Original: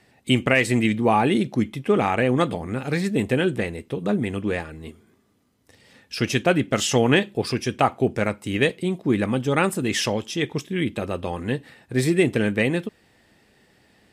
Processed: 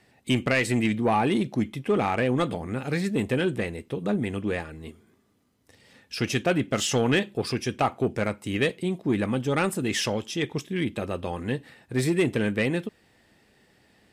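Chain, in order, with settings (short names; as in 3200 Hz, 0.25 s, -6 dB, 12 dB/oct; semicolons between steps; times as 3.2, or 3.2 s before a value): soft clip -11.5 dBFS, distortion -18 dB; gain -2.5 dB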